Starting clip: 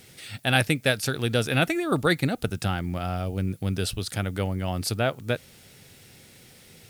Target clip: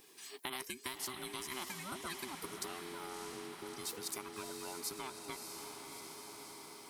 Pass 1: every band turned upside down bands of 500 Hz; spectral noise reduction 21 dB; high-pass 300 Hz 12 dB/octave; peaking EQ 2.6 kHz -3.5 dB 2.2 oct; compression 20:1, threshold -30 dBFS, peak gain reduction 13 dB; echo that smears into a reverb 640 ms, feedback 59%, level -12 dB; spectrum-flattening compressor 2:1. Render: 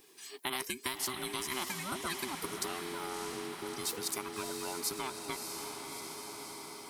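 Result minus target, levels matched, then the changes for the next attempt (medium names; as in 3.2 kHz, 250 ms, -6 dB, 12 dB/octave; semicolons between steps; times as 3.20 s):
compression: peak gain reduction -6 dB
change: compression 20:1, threshold -36.5 dBFS, peak gain reduction 19 dB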